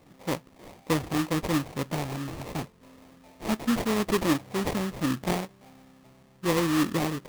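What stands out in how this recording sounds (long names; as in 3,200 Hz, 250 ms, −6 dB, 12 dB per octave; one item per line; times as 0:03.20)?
aliases and images of a low sample rate 1,500 Hz, jitter 20%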